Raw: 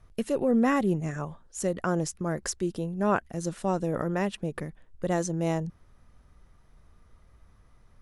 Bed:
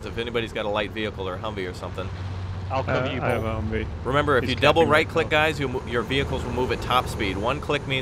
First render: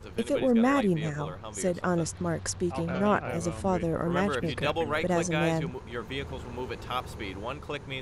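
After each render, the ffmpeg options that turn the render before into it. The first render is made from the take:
-filter_complex "[1:a]volume=-11dB[a];[0:a][a]amix=inputs=2:normalize=0"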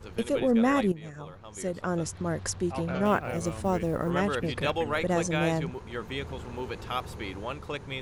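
-filter_complex "[0:a]asettb=1/sr,asplit=3[a][b][c];[a]atrim=end=3.054[d];[b]atrim=start=3.05:end=4.1,asetpts=PTS-STARTPTS,afade=t=in:d=0.004:c=qsin,afade=t=out:st=1.046:d=0.004:c=qsin,acrusher=bits=8:mode=log:mix=0:aa=0.000001[e];[c]atrim=start=4.096[f];[d][e]acrossfade=d=0.004:c1=hsin:c2=qsin[g];[g][f]acrossfade=d=0.004:c1=qsin:c2=hsin,asplit=2[h][i];[h]atrim=end=0.92,asetpts=PTS-STARTPTS,afade=t=out:st=0.916:d=0.004:c=hsin:silence=0.223872[j];[i]atrim=start=0.92,asetpts=PTS-STARTPTS,afade=t=in:d=1.46:silence=0.223872[k];[j][k]concat=n=2:v=0:a=1"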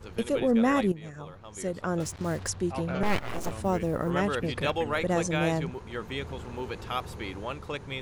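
-filter_complex "[0:a]asettb=1/sr,asplit=3[a][b][c];[a]atrim=end=2.004[d];[b]atrim=start=2:end=2.48,asetpts=PTS-STARTPTS,afade=t=in:d=0.004:c=qsin,afade=t=out:st=0.476:d=0.004:c=qsin,acrusher=bits=6:mix=0:aa=0.5[e];[c]atrim=start=2.476[f];[d][e]acrossfade=d=0.004:c1=hsin:c2=qsin[g];[g][f]acrossfade=d=0.004:c1=qsin:c2=hsin,asettb=1/sr,asplit=3[h][i][j];[h]atrim=end=3.034[k];[i]atrim=start=3.03:end=3.52,asetpts=PTS-STARTPTS,afade=t=in:d=0.004:c=qsin,afade=t=out:st=0.486:d=0.004:c=qsin,aeval=exprs='abs(val(0))':c=same[l];[j]atrim=start=3.516[m];[k][l]acrossfade=d=0.004:c1=hsin:c2=qsin[n];[n][m]acrossfade=d=0.004:c1=qsin:c2=hsin"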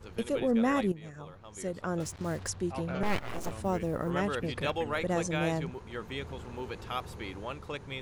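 -af "volume=-3.5dB"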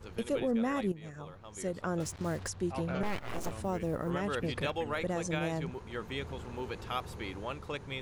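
-af "alimiter=limit=-22.5dB:level=0:latency=1:release=167"

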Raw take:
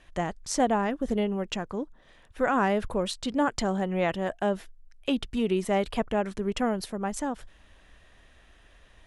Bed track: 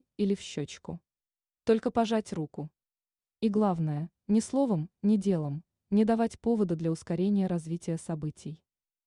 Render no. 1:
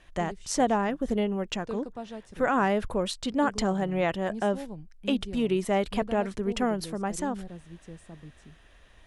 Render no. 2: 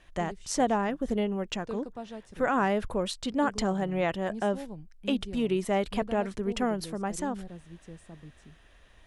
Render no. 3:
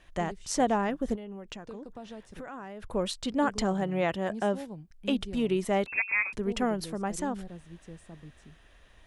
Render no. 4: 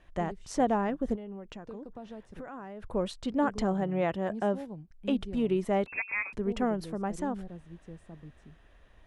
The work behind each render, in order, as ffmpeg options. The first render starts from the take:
-filter_complex "[1:a]volume=-12.5dB[a];[0:a][a]amix=inputs=2:normalize=0"
-af "volume=-1.5dB"
-filter_complex "[0:a]asettb=1/sr,asplit=3[a][b][c];[a]atrim=end=1.154[d];[b]atrim=start=1.15:end=2.94,asetpts=PTS-STARTPTS,afade=t=in:d=0.004:c=qsin,afade=t=out:st=1.786:d=0.004:c=qsin,acompressor=threshold=-37dB:ratio=16:attack=3.2:release=140:knee=1:detection=peak[e];[c]atrim=start=2.936[f];[d][e]acrossfade=d=0.004:c1=hsin:c2=qsin[g];[g][f]acrossfade=d=0.004:c1=qsin:c2=hsin,asettb=1/sr,asplit=3[h][i][j];[h]atrim=end=3.814[k];[i]atrim=start=3.81:end=4.91,asetpts=PTS-STARTPTS,afade=t=in:d=0.004:c=qsin,afade=t=out:st=1.096:d=0.004:c=qsin,highpass=50[l];[j]atrim=start=4.906[m];[k][l]acrossfade=d=0.004:c1=hsin:c2=qsin[n];[n][m]acrossfade=d=0.004:c1=qsin:c2=hsin,asettb=1/sr,asplit=3[o][p][q];[o]atrim=end=5.864[r];[p]atrim=start=5.86:end=6.33,asetpts=PTS-STARTPTS,afade=t=in:d=0.004:c=qsin,afade=t=out:st=0.466:d=0.004:c=qsin,lowpass=f=2.3k:t=q:w=0.5098,lowpass=f=2.3k:t=q:w=0.6013,lowpass=f=2.3k:t=q:w=0.9,lowpass=f=2.3k:t=q:w=2.563,afreqshift=-2700[s];[q]atrim=start=6.326[t];[r][s]acrossfade=d=0.004:c1=hsin:c2=qsin[u];[u][t]acrossfade=d=0.004:c1=qsin:c2=hsin"
-af "highshelf=f=2.3k:g=-10.5"

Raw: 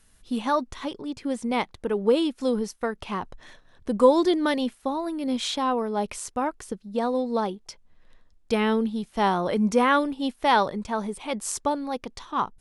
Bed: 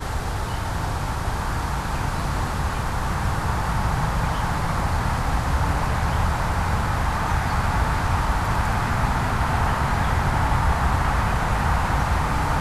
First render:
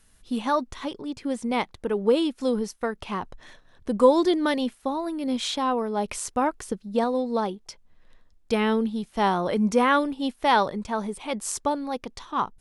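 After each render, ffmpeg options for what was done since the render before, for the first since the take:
-filter_complex "[0:a]asplit=3[a][b][c];[a]atrim=end=6.082[d];[b]atrim=start=6.078:end=7.042,asetpts=PTS-STARTPTS,volume=3dB[e];[c]atrim=start=7.038[f];[d][e]acrossfade=d=0.004:c1=hsin:c2=hsin[g];[g][f]acrossfade=d=0.004:c1=hsin:c2=hsin"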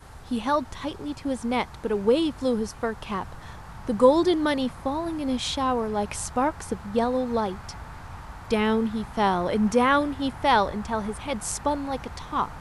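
-filter_complex "[1:a]volume=-18.5dB[a];[0:a][a]amix=inputs=2:normalize=0"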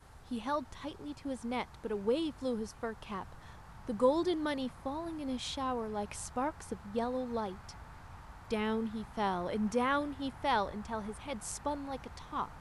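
-af "volume=-10.5dB"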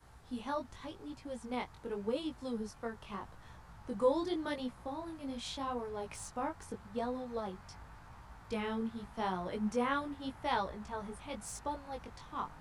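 -filter_complex "[0:a]acrossover=split=160|4400[a][b][c];[c]asoftclip=type=hard:threshold=-36.5dB[d];[a][b][d]amix=inputs=3:normalize=0,flanger=delay=16:depth=5.8:speed=0.85"

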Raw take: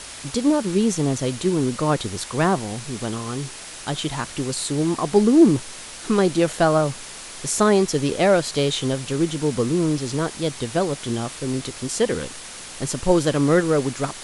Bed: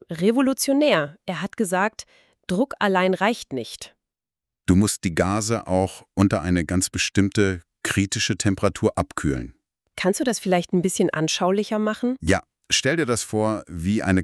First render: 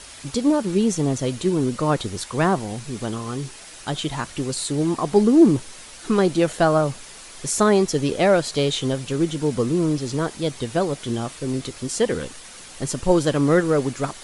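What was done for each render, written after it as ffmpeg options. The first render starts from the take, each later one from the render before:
-af "afftdn=nr=6:nf=-38"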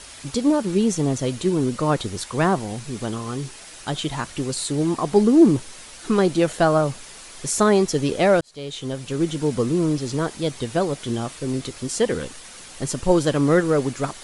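-filter_complex "[0:a]asplit=2[a][b];[a]atrim=end=8.41,asetpts=PTS-STARTPTS,afade=t=out:st=8.406:d=0.004:c=hsin[c];[b]atrim=start=8.41,asetpts=PTS-STARTPTS,afade=t=in:d=0.89[d];[c][d]concat=n=2:v=0:a=1"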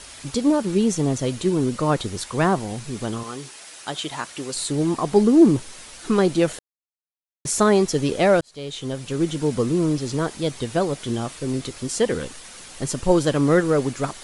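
-filter_complex "[0:a]asettb=1/sr,asplit=3[a][b][c];[a]atrim=end=3.234[d];[b]atrim=start=3.23:end=4.55,asetpts=PTS-STARTPTS,afade=t=in:d=0.004:c=qsin,afade=t=out:st=1.316:d=0.004:c=qsin,highpass=f=450:p=1[e];[c]atrim=start=4.546[f];[d][e]acrossfade=d=0.004:c1=hsin:c2=qsin[g];[g][f]acrossfade=d=0.004:c1=qsin:c2=hsin,asplit=3[h][i][j];[h]atrim=end=6.59,asetpts=PTS-STARTPTS,afade=t=out:st=6.586:d=0.004:c=hsin[k];[i]atrim=start=6.59:end=7.45,asetpts=PTS-STARTPTS,volume=0[l];[j]atrim=start=7.45,asetpts=PTS-STARTPTS,afade=t=in:d=0.004:c=hsin[m];[k][l][m]concat=n=3:v=0:a=1"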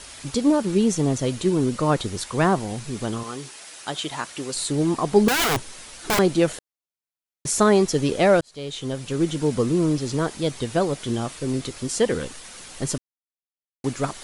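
-filter_complex "[0:a]asettb=1/sr,asplit=3[a][b][c];[a]atrim=end=5.284[d];[b]atrim=start=5.28:end=6.19,asetpts=PTS-STARTPTS,afade=t=in:d=0.004:c=qsin,afade=t=out:st=0.906:d=0.004:c=qsin,aeval=exprs='(mod(6.31*val(0)+1,2)-1)/6.31':c=same[e];[c]atrim=start=6.186[f];[d][e]acrossfade=d=0.004:c1=hsin:c2=qsin[g];[g][f]acrossfade=d=0.004:c1=qsin:c2=hsin,asplit=3[h][i][j];[h]atrim=end=12.98,asetpts=PTS-STARTPTS,afade=t=out:st=12.976:d=0.004:c=hsin[k];[i]atrim=start=12.98:end=13.84,asetpts=PTS-STARTPTS,volume=0[l];[j]atrim=start=13.84,asetpts=PTS-STARTPTS,afade=t=in:d=0.004:c=hsin[m];[k][l][m]concat=n=3:v=0:a=1"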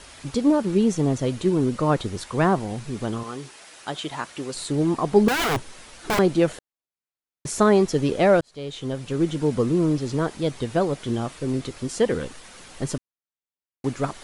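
-af "highshelf=f=3.6k:g=-8"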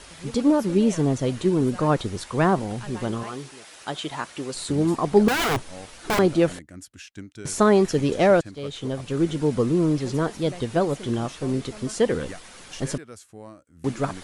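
-filter_complex "[1:a]volume=-20.5dB[a];[0:a][a]amix=inputs=2:normalize=0"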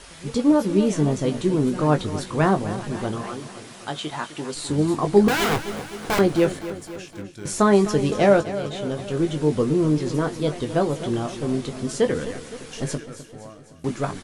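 -filter_complex "[0:a]asplit=2[a][b];[b]adelay=20,volume=-8dB[c];[a][c]amix=inputs=2:normalize=0,aecho=1:1:257|514|771|1028|1285|1542:0.211|0.127|0.0761|0.0457|0.0274|0.0164"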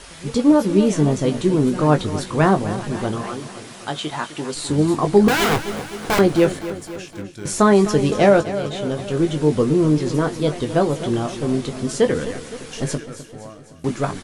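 -af "volume=3.5dB,alimiter=limit=-3dB:level=0:latency=1"

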